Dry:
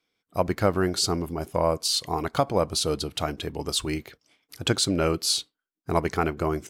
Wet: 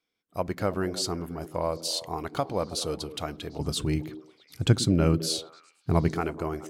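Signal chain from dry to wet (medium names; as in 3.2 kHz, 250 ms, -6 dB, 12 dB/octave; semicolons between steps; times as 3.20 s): 3.59–6.14 s: peaking EQ 120 Hz +13.5 dB 2.3 oct; repeats whose band climbs or falls 107 ms, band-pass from 230 Hz, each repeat 0.7 oct, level -8 dB; trim -5.5 dB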